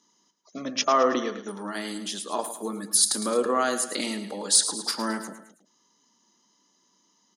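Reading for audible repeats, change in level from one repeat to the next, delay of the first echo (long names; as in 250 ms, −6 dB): 3, −6.0 dB, 108 ms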